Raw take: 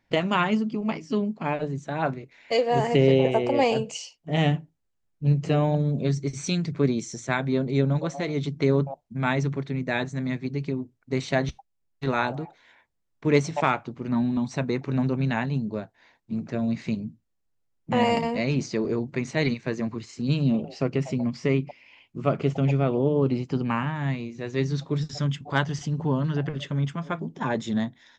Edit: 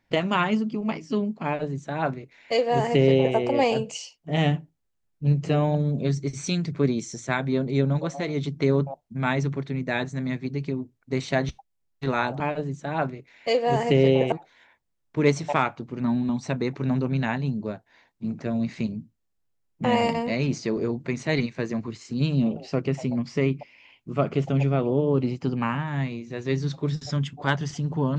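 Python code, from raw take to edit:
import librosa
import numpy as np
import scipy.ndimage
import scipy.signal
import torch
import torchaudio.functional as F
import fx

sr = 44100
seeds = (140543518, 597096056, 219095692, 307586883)

y = fx.edit(x, sr, fx.duplicate(start_s=1.44, length_s=1.92, to_s=12.4), tone=tone)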